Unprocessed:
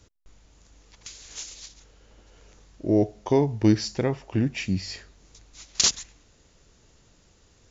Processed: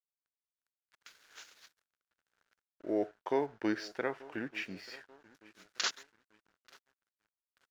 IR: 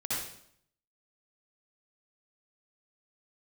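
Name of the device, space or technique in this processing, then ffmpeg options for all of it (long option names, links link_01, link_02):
pocket radio on a weak battery: -filter_complex "[0:a]highpass=400,lowpass=3600,asplit=2[link_01][link_02];[link_02]adelay=886,lowpass=frequency=2900:poles=1,volume=-20dB,asplit=2[link_03][link_04];[link_04]adelay=886,lowpass=frequency=2900:poles=1,volume=0.49,asplit=2[link_05][link_06];[link_06]adelay=886,lowpass=frequency=2900:poles=1,volume=0.49,asplit=2[link_07][link_08];[link_08]adelay=886,lowpass=frequency=2900:poles=1,volume=0.49[link_09];[link_01][link_03][link_05][link_07][link_09]amix=inputs=5:normalize=0,aeval=exprs='sgn(val(0))*max(abs(val(0))-0.00188,0)':channel_layout=same,equalizer=frequency=1500:width_type=o:width=0.57:gain=11.5,volume=-7dB"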